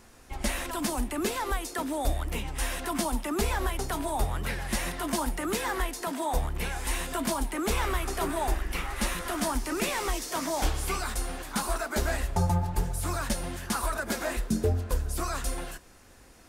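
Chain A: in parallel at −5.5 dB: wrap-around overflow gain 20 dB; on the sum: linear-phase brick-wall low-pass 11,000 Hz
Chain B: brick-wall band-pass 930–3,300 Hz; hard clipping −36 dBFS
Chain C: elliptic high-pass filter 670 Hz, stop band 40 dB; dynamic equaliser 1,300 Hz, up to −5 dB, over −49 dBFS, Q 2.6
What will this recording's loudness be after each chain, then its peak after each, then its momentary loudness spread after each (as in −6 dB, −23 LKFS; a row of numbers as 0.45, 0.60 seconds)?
−27.5, −40.0, −35.0 LKFS; −15.0, −36.0, −19.5 dBFS; 4, 7, 5 LU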